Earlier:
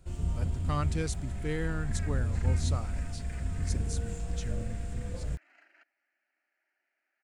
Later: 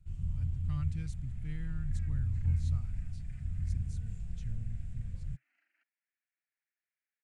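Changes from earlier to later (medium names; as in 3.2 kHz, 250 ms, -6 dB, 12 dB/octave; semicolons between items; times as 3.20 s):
first sound: add peaking EQ 62 Hz -14 dB 0.33 oct; master: add FFT filter 130 Hz 0 dB, 450 Hz -29 dB, 2.3 kHz -13 dB, 5.2 kHz -18 dB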